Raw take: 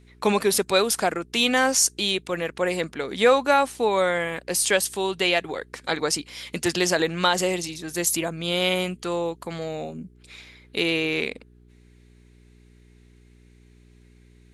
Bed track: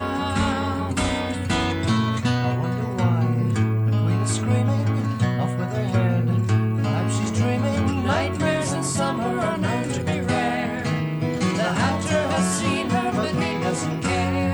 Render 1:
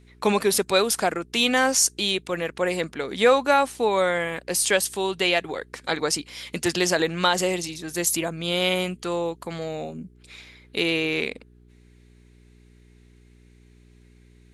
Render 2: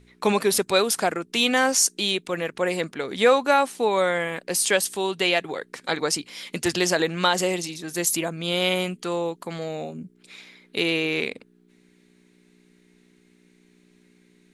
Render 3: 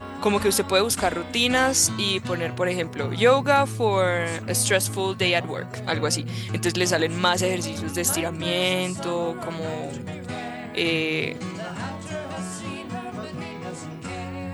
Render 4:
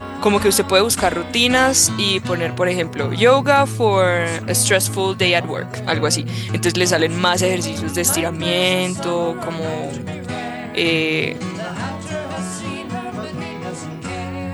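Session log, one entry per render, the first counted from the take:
no audible change
de-hum 60 Hz, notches 2
add bed track -10.5 dB
trim +6 dB; peak limiter -2 dBFS, peak gain reduction 3 dB

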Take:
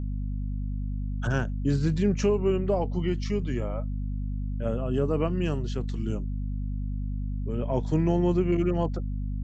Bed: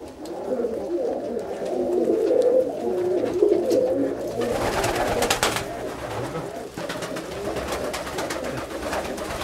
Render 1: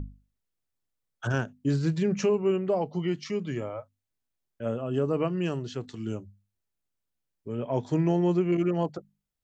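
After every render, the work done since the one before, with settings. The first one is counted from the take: hum notches 50/100/150/200/250 Hz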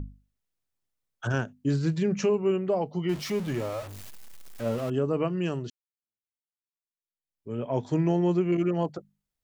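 3.09–4.90 s: jump at every zero crossing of -35 dBFS; 5.70–7.52 s: fade in exponential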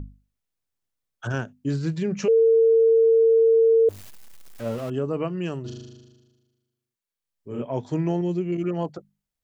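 2.28–3.89 s: bleep 453 Hz -13.5 dBFS; 5.61–7.62 s: flutter echo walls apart 6.6 m, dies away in 1.3 s; 8.21–8.64 s: peaking EQ 1.1 kHz -11.5 dB 1.5 oct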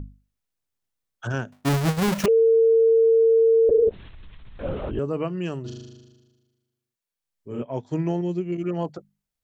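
1.52–2.26 s: square wave that keeps the level; 3.69–4.99 s: LPC vocoder at 8 kHz whisper; 7.63–8.69 s: upward expansion, over -40 dBFS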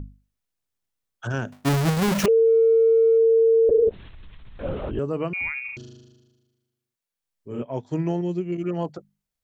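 1.38–3.18 s: transient shaper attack +1 dB, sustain +7 dB; 5.33–5.77 s: frequency inversion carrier 2.6 kHz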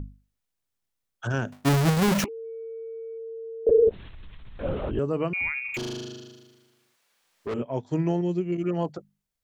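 2.24–3.67 s: vowel filter u; 5.74–7.54 s: overdrive pedal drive 31 dB, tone 3.3 kHz, clips at -23 dBFS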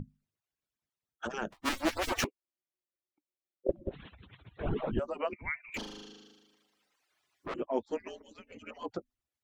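harmonic-percussive separation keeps percussive; treble shelf 7.2 kHz -10 dB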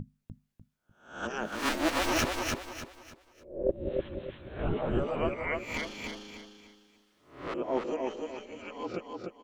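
reverse spectral sustain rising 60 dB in 0.48 s; feedback delay 298 ms, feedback 33%, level -3.5 dB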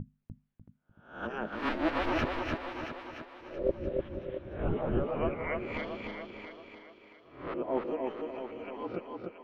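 distance through air 370 m; thinning echo 676 ms, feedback 30%, high-pass 220 Hz, level -9 dB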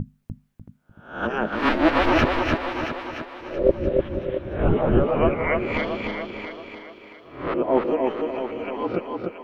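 trim +11.5 dB

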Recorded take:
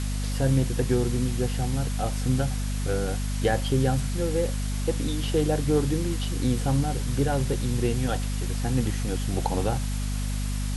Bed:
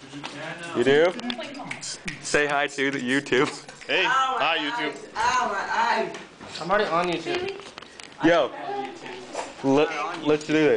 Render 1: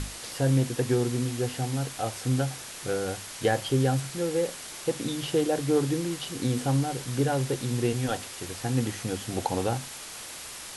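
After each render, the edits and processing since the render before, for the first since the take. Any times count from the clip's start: hum notches 50/100/150/200/250 Hz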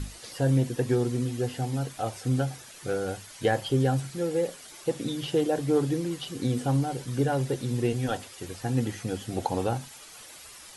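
noise reduction 10 dB, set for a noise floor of -41 dBFS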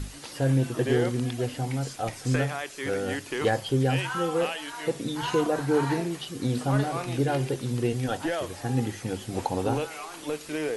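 add bed -10.5 dB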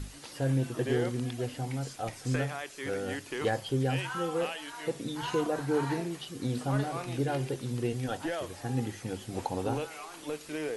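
trim -5 dB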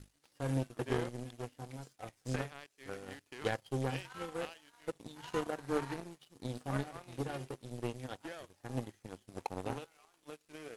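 power-law waveshaper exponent 2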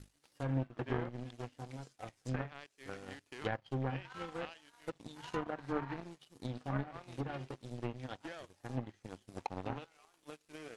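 dynamic bell 440 Hz, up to -5 dB, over -50 dBFS, Q 2.3; low-pass that closes with the level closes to 2 kHz, closed at -33.5 dBFS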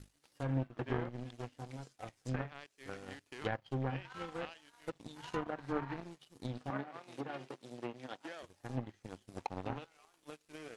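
6.70–8.43 s: high-pass 230 Hz

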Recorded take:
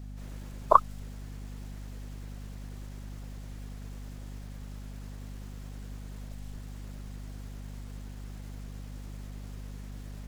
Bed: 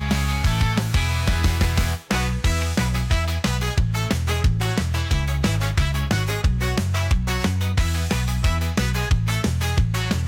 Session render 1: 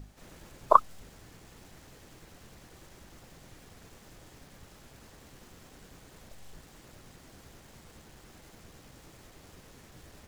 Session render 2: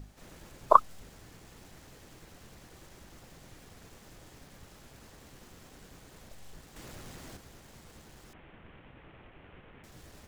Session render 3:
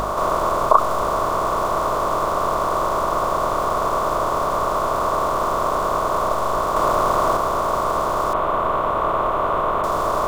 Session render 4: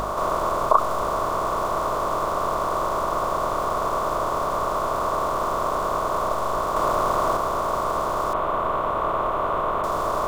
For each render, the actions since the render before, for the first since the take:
hum notches 50/100/150/200/250 Hz
6.76–7.37 s: companding laws mixed up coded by mu; 8.33–9.84 s: CVSD coder 16 kbps
spectral levelling over time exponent 0.4; loudness maximiser +12.5 dB
trim -3.5 dB

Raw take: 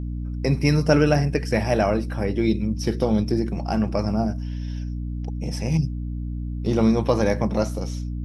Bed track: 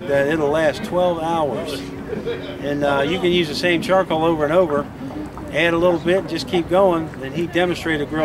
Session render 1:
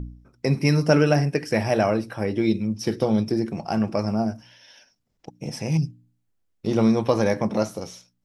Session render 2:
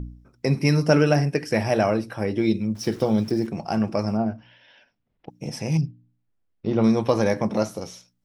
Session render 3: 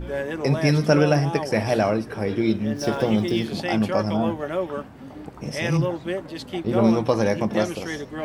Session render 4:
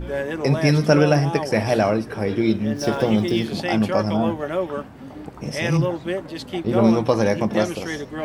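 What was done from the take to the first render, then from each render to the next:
de-hum 60 Hz, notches 5
2.75–3.47 s: small samples zeroed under -42.5 dBFS; 4.17–5.30 s: low-pass 3.4 kHz 24 dB/octave; 5.81–6.84 s: distance through air 230 m
add bed track -10.5 dB
trim +2 dB

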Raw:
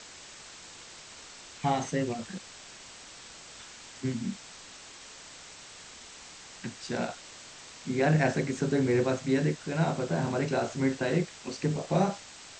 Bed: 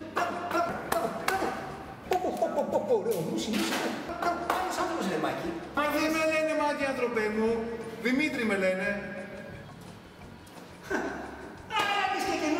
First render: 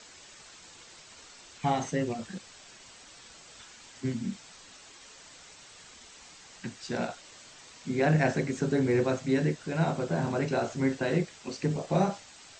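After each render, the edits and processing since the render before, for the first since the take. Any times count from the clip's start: noise reduction 6 dB, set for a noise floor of -49 dBFS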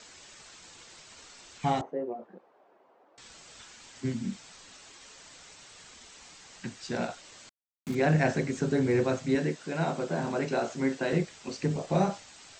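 1.81–3.18 s: Butterworth band-pass 560 Hz, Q 0.94; 7.49–7.95 s: small samples zeroed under -39 dBFS; 9.35–11.13 s: high-pass 180 Hz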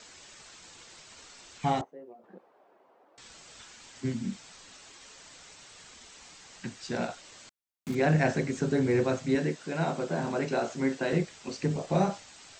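1.84–2.24 s: pre-emphasis filter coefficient 0.8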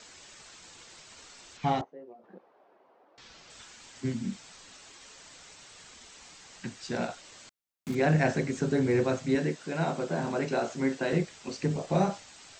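1.57–3.50 s: low-pass 5.9 kHz 24 dB/octave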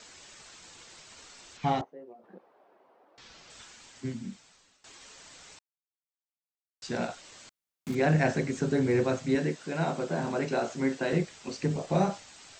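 3.63–4.84 s: fade out, to -19.5 dB; 5.59–6.82 s: mute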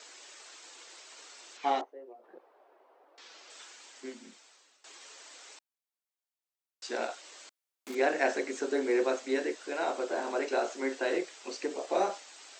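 inverse Chebyshev high-pass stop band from 160 Hz, stop band 40 dB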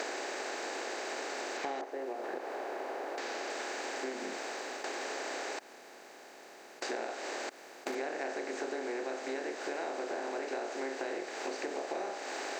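spectral levelling over time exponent 0.4; compression 6:1, threshold -35 dBFS, peak gain reduction 15.5 dB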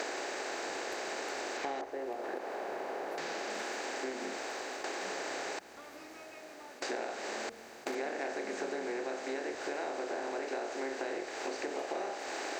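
add bed -25 dB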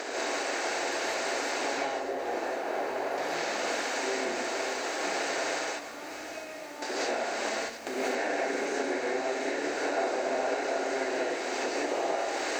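chunks repeated in reverse 480 ms, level -11 dB; gated-style reverb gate 220 ms rising, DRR -6.5 dB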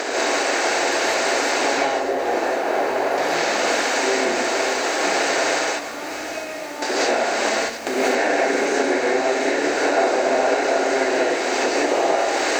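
trim +11 dB

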